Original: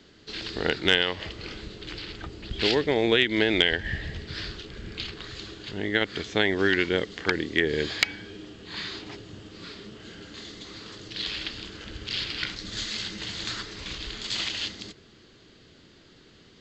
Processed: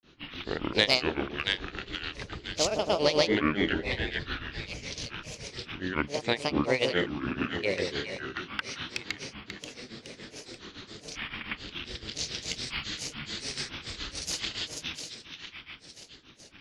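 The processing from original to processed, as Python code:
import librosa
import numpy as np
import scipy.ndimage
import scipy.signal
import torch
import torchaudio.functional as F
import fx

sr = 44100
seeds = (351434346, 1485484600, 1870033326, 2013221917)

y = fx.echo_split(x, sr, split_hz=870.0, low_ms=208, high_ms=503, feedback_pct=52, wet_db=-4.5)
y = fx.granulator(y, sr, seeds[0], grain_ms=193.0, per_s=7.1, spray_ms=100.0, spread_st=7)
y = y * librosa.db_to_amplitude(-1.5)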